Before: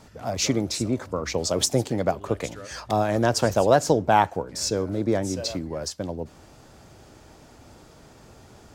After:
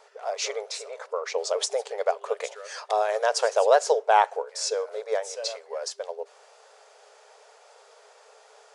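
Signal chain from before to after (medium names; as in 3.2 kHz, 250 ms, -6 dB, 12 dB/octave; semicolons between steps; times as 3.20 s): treble shelf 4.1 kHz -8 dB, from 2.01 s -2.5 dB; FFT band-pass 400–11000 Hz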